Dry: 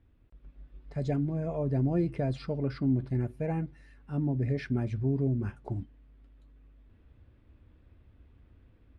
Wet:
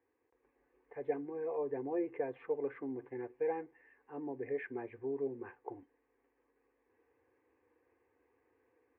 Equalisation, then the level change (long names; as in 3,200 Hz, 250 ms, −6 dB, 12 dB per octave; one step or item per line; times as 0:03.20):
high-frequency loss of the air 89 metres
loudspeaker in its box 420–2,200 Hz, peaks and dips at 480 Hz +8 dB, 710 Hz +5 dB, 1,500 Hz +9 dB
phaser with its sweep stopped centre 940 Hz, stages 8
−1.0 dB